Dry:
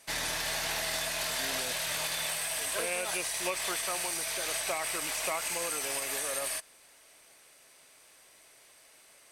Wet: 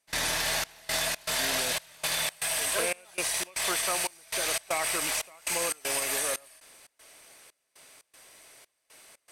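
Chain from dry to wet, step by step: trance gate ".xxxx..xx" 118 bpm -24 dB; trim +4.5 dB

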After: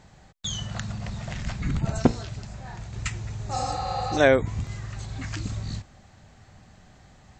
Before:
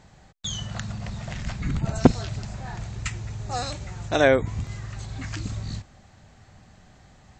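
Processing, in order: 2.02–2.93 s: feedback comb 59 Hz, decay 0.38 s, harmonics all, mix 50%; 3.58–4.15 s: spectral replace 390–4900 Hz before

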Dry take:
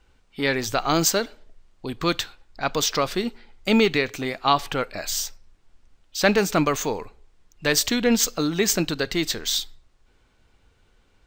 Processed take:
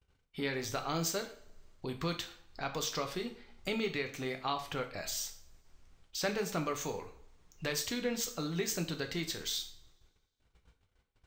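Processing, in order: gate -56 dBFS, range -28 dB; compression 2:1, threshold -40 dBFS, peak gain reduction 14.5 dB; two-slope reverb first 0.44 s, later 1.7 s, from -26 dB, DRR 4.5 dB; trim -3 dB

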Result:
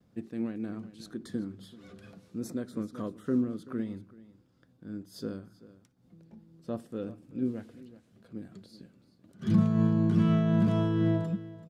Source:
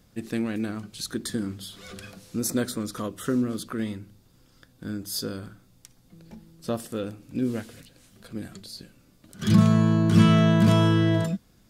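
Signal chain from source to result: gate with hold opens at -53 dBFS; Bessel high-pass 210 Hz, order 2; tilt EQ -3.5 dB/octave; on a send: delay 383 ms -17 dB; on the sum: random flutter of the level, depth 65%; trim -6.5 dB

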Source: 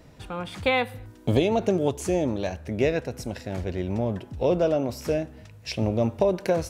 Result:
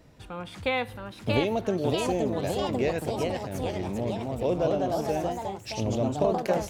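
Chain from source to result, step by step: ever faster or slower copies 705 ms, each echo +2 st, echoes 3; trim -4.5 dB

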